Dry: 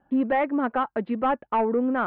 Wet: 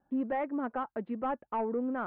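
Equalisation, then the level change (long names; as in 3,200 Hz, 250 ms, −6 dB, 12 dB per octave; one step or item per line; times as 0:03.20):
high-shelf EQ 2,900 Hz −12 dB
−8.5 dB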